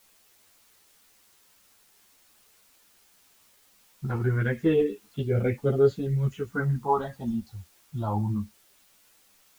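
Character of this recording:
phaser sweep stages 4, 0.23 Hz, lowest notch 390–1,000 Hz
a quantiser's noise floor 10 bits, dither triangular
a shimmering, thickened sound

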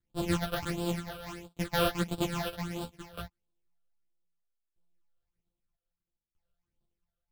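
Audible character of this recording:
a buzz of ramps at a fixed pitch in blocks of 256 samples
phaser sweep stages 8, 1.5 Hz, lowest notch 260–2,000 Hz
tremolo saw down 0.63 Hz, depth 90%
a shimmering, thickened sound

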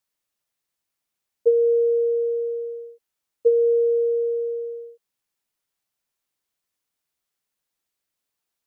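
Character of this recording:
background noise floor −83 dBFS
spectral slope +3.5 dB per octave

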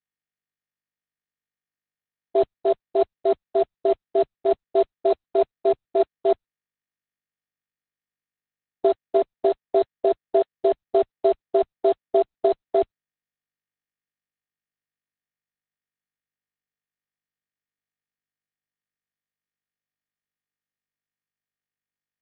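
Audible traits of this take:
a buzz of ramps at a fixed pitch in blocks of 8 samples
tremolo triangle 6.7 Hz, depth 30%
a quantiser's noise floor 8 bits, dither none
Opus

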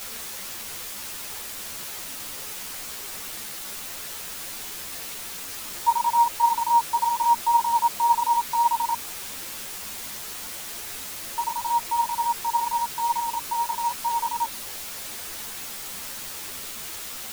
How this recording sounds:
a quantiser's noise floor 6 bits, dither triangular
a shimmering, thickened sound

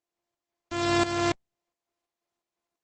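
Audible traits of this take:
a buzz of ramps at a fixed pitch in blocks of 128 samples
tremolo saw up 2.9 Hz, depth 80%
Opus

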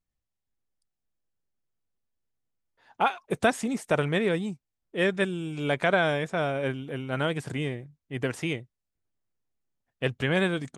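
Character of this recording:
background noise floor −85 dBFS
spectral slope −4.5 dB per octave

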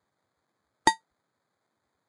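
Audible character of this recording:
aliases and images of a low sample rate 2,800 Hz, jitter 0%
Ogg Vorbis

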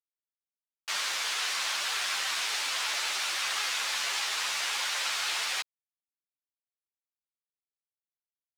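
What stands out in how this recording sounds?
a quantiser's noise floor 8 bits, dither none
a shimmering, thickened sound

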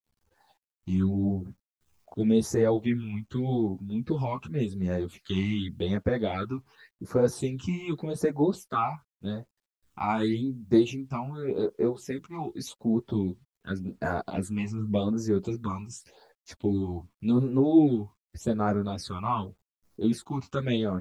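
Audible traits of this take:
phaser sweep stages 8, 0.87 Hz, lowest notch 470–3,300 Hz
a quantiser's noise floor 12 bits, dither none
a shimmering, thickened sound

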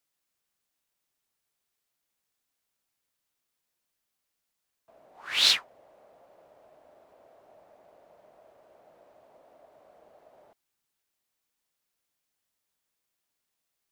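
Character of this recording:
background noise floor −83 dBFS
spectral slope 0.0 dB per octave

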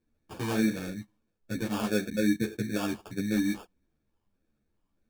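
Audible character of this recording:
phaser sweep stages 6, 1.6 Hz, lowest notch 540–1,200 Hz
aliases and images of a low sample rate 2,000 Hz, jitter 0%
a shimmering, thickened sound

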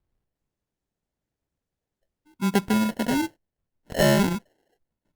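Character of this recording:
phaser sweep stages 12, 0.93 Hz, lowest notch 430–1,100 Hz
aliases and images of a low sample rate 1,200 Hz, jitter 0%
Opus

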